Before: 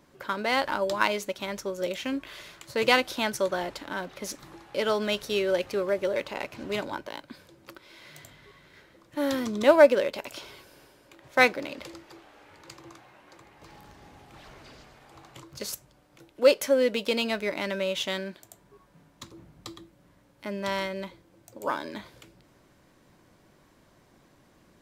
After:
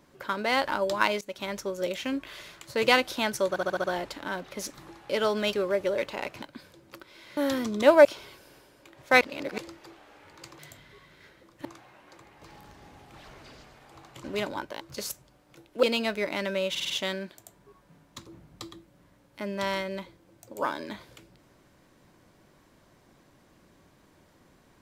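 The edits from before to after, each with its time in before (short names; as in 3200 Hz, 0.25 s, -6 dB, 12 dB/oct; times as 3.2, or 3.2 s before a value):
1.21–1.51 fade in equal-power, from -19 dB
3.49 stutter 0.07 s, 6 plays
5.18–5.71 cut
6.6–7.17 move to 15.44
8.12–9.18 move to 12.85
9.86–10.31 cut
11.47–11.84 reverse
16.46–17.08 cut
17.95 stutter 0.05 s, 5 plays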